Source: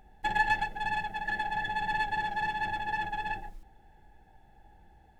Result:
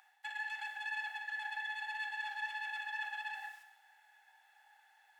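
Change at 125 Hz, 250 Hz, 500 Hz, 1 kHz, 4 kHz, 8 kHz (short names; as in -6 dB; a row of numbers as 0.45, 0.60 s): under -40 dB, under -40 dB, under -25 dB, -14.5 dB, -5.5 dB, n/a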